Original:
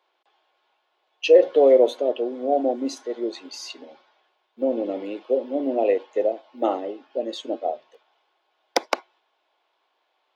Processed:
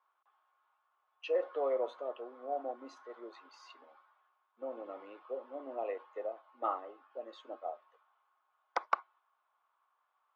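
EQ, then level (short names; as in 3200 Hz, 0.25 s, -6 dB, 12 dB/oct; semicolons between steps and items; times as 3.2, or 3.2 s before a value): band-pass 1200 Hz, Q 5.6; +2.5 dB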